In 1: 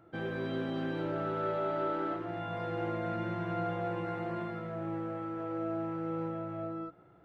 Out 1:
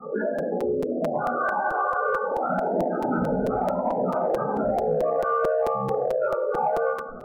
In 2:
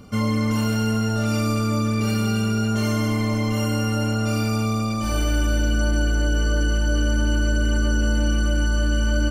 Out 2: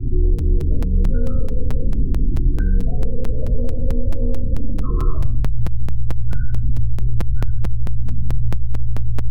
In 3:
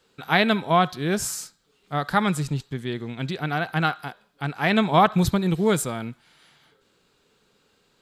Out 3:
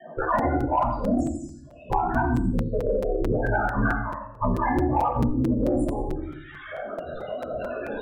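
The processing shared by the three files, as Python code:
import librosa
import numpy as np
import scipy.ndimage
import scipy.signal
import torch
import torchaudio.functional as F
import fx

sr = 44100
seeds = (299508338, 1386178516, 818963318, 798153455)

p1 = fx.cycle_switch(x, sr, every=2, mode='inverted')
p2 = fx.recorder_agc(p1, sr, target_db=-11.5, rise_db_per_s=5.7, max_gain_db=30)
p3 = fx.low_shelf(p2, sr, hz=350.0, db=-6.5)
p4 = fx.spec_topn(p3, sr, count=4)
p5 = p4 * np.sin(2.0 * np.pi * 33.0 * np.arange(len(p4)) / sr)
p6 = fx.room_shoebox(p5, sr, seeds[0], volume_m3=370.0, walls='furnished', distance_m=6.1)
p7 = 10.0 ** (-14.0 / 20.0) * np.tanh(p6 / 10.0 ** (-14.0 / 20.0))
p8 = p6 + F.gain(torch.from_numpy(p7), -8.0).numpy()
p9 = fx.band_shelf(p8, sr, hz=5200.0, db=-11.5, octaves=1.7)
p10 = p9 + fx.echo_thinned(p9, sr, ms=87, feedback_pct=23, hz=640.0, wet_db=-8.5, dry=0)
p11 = fx.buffer_crackle(p10, sr, first_s=0.38, period_s=0.22, block=256, kind='repeat')
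p12 = fx.band_squash(p11, sr, depth_pct=100)
y = F.gain(torch.from_numpy(p12), -4.5).numpy()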